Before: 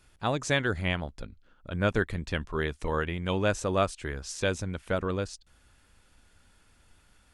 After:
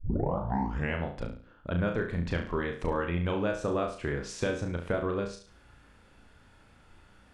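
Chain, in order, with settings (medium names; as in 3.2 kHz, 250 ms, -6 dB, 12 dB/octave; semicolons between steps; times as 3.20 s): tape start-up on the opening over 1.03 s; low-pass 1.6 kHz 6 dB/octave; bass shelf 61 Hz -8.5 dB; compression 6:1, threshold -34 dBFS, peak gain reduction 12.5 dB; on a send: flutter echo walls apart 6 m, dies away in 0.43 s; on the sum: trim +6.5 dB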